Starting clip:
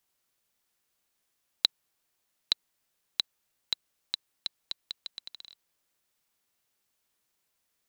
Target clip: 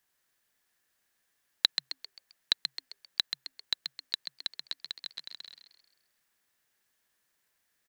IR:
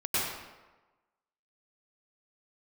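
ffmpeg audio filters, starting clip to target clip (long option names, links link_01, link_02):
-filter_complex "[0:a]equalizer=frequency=1700:width_type=o:width=0.33:gain=10.5,asplit=6[link_01][link_02][link_03][link_04][link_05][link_06];[link_02]adelay=132,afreqshift=130,volume=-7.5dB[link_07];[link_03]adelay=264,afreqshift=260,volume=-14.8dB[link_08];[link_04]adelay=396,afreqshift=390,volume=-22.2dB[link_09];[link_05]adelay=528,afreqshift=520,volume=-29.5dB[link_10];[link_06]adelay=660,afreqshift=650,volume=-36.8dB[link_11];[link_01][link_07][link_08][link_09][link_10][link_11]amix=inputs=6:normalize=0"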